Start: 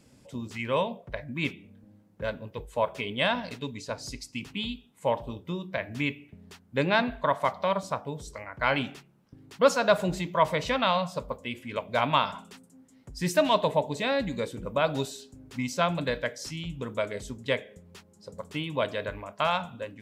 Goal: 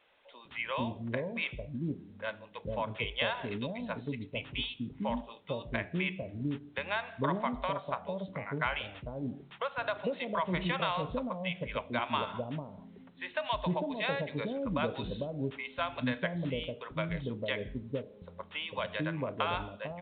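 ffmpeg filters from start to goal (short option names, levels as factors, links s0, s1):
-filter_complex "[0:a]acompressor=threshold=0.0501:ratio=12,acrossover=split=570[s0][s1];[s0]adelay=450[s2];[s2][s1]amix=inputs=2:normalize=0" -ar 8000 -c:a pcm_alaw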